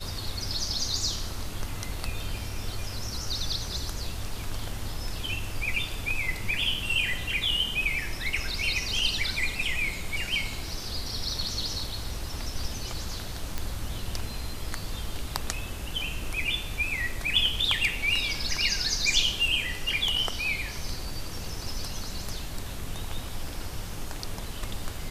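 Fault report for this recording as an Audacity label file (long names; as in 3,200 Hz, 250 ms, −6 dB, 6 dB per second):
13.580000	13.580000	click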